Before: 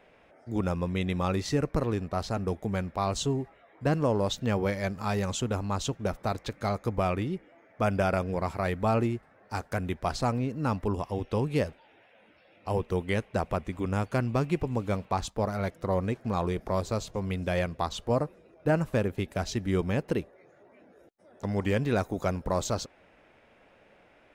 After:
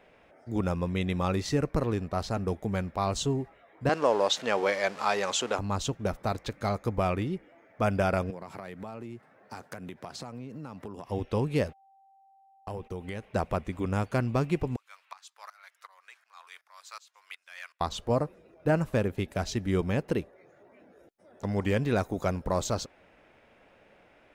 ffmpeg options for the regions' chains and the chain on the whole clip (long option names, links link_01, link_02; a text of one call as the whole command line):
ffmpeg -i in.wav -filter_complex "[0:a]asettb=1/sr,asplit=3[link_01][link_02][link_03];[link_01]atrim=end=3.894[link_04];[link_02]atrim=start=3.89:end=5.59,asetpts=PTS-STARTPTS,afade=type=in:duration=0.004:curve=qsin,afade=type=out:start_time=1.696:duration=0.004:curve=qsin,aeval=exprs='val(0)+0.5*0.00891*sgn(val(0))':channel_layout=same,highpass=510,lowpass=7300,acontrast=37[link_05];[link_03]atrim=start=5.586[link_06];[link_04][link_05]acrossfade=duration=0.004:curve1=hsin:curve2=qsin[link_07];[link_07][link_06]acrossfade=duration=0.004:curve1=qsin:curve2=hsin,asettb=1/sr,asplit=3[link_08][link_09][link_10];[link_08]atrim=end=8.304[link_11];[link_09]atrim=start=8.3:end=11.07,asetpts=PTS-STARTPTS,afade=type=in:duration=0.004:curve=qsin,afade=type=out:start_time=2.766:duration=0.004:curve=qsin,highpass=frequency=120:width=0.5412,highpass=frequency=120:width=1.3066,acompressor=threshold=-36dB:ratio=10:attack=3.2:release=140:knee=1:detection=peak[link_12];[link_10]atrim=start=11.066[link_13];[link_11][link_12]acrossfade=duration=0.004:curve1=hsin:curve2=qsin[link_14];[link_14][link_13]acrossfade=duration=0.004:curve1=qsin:curve2=hsin,asettb=1/sr,asplit=3[link_15][link_16][link_17];[link_15]atrim=end=11.684[link_18];[link_16]atrim=start=11.68:end=13.24,asetpts=PTS-STARTPTS,afade=type=in:duration=0.004:curve=qsin,afade=type=out:start_time=1.556:duration=0.004:curve=qsin,agate=range=-46dB:threshold=-47dB:ratio=16:release=100:detection=peak,acompressor=threshold=-33dB:ratio=6:attack=3.2:release=140:knee=1:detection=peak,aeval=exprs='val(0)+0.00126*sin(2*PI*780*n/s)':channel_layout=same[link_19];[link_17]atrim=start=13.236[link_20];[link_18][link_19]acrossfade=duration=0.004:curve1=hsin:curve2=qsin[link_21];[link_21][link_20]acrossfade=duration=0.004:curve1=qsin:curve2=hsin,asettb=1/sr,asplit=3[link_22][link_23][link_24];[link_22]atrim=end=14.764[link_25];[link_23]atrim=start=14.76:end=17.81,asetpts=PTS-STARTPTS,afade=type=in:duration=0.004:curve=qsin,afade=type=out:start_time=3.046:duration=0.004:curve=qsin,highpass=frequency=1200:width=0.5412,highpass=frequency=1200:width=1.3066,volume=26dB,asoftclip=hard,volume=-26dB,aeval=exprs='val(0)*pow(10,-19*if(lt(mod(-2.7*n/s,1),2*abs(-2.7)/1000),1-mod(-2.7*n/s,1)/(2*abs(-2.7)/1000),(mod(-2.7*n/s,1)-2*abs(-2.7)/1000)/(1-2*abs(-2.7)/1000))/20)':channel_layout=same[link_26];[link_24]atrim=start=17.806[link_27];[link_25][link_26]acrossfade=duration=0.004:curve1=hsin:curve2=qsin[link_28];[link_28][link_27]acrossfade=duration=0.004:curve1=qsin:curve2=hsin" out.wav